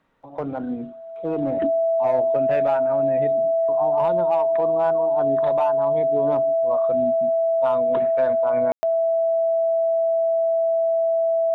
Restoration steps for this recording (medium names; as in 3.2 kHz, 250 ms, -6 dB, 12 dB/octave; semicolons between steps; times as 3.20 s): band-stop 660 Hz, Q 30; room tone fill 8.72–8.83 s